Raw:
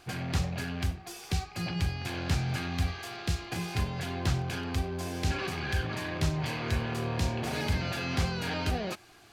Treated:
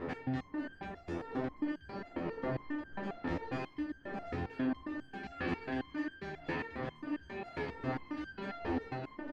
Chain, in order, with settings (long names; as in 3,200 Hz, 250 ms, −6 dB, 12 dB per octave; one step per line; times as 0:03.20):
fade-out on the ending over 1.16 s
wind on the microphone 620 Hz −27 dBFS
low-pass filter 2,500 Hz 12 dB per octave
double-tracking delay 14 ms −7.5 dB
hollow resonant body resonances 280/1,800 Hz, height 12 dB, ringing for 40 ms
reversed playback
downward compressor 8 to 1, threshold −27 dBFS, peak gain reduction 22 dB
reversed playback
low-shelf EQ 140 Hz −8.5 dB
single-tap delay 615 ms −5.5 dB
step-sequenced resonator 7.4 Hz 85–1,600 Hz
level +6.5 dB